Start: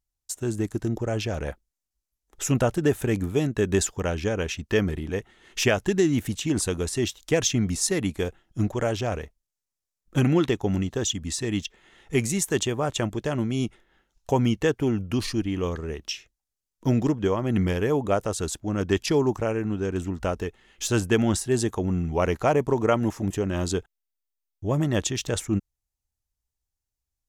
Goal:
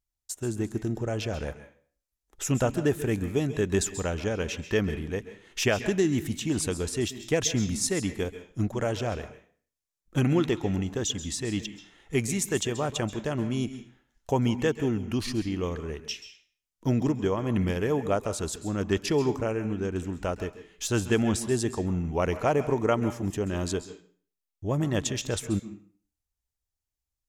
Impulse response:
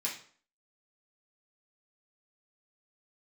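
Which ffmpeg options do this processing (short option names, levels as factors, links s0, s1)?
-filter_complex "[0:a]asplit=2[s0][s1];[1:a]atrim=start_sample=2205,adelay=132[s2];[s1][s2]afir=irnorm=-1:irlink=0,volume=0.188[s3];[s0][s3]amix=inputs=2:normalize=0,volume=0.708"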